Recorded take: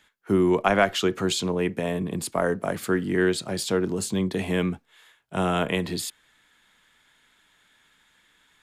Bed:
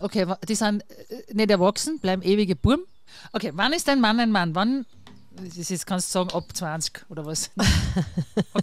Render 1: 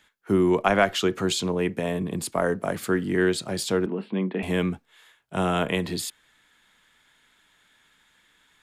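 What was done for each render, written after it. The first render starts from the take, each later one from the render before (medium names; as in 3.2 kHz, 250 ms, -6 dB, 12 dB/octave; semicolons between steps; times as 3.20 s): 3.86–4.43 s: elliptic band-pass 190–2700 Hz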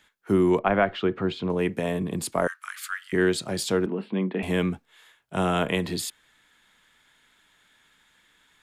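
0.59–1.50 s: distance through air 400 m; 2.47–3.13 s: steep high-pass 1.2 kHz 48 dB/octave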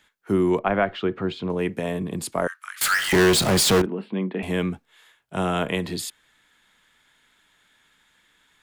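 2.81–3.82 s: power-law waveshaper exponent 0.35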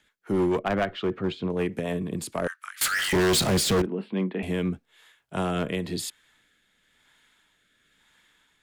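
rotary cabinet horn 6.7 Hz, later 1 Hz, at 2.58 s; hard clipper -19 dBFS, distortion -13 dB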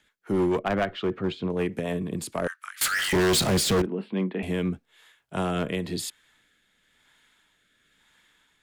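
no audible change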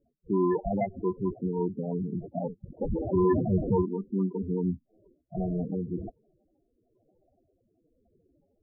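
sample-and-hold 32×; loudest bins only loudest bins 8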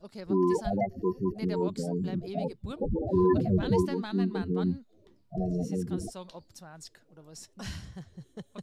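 add bed -19.5 dB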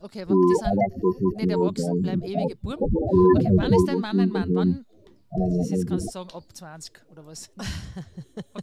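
trim +7 dB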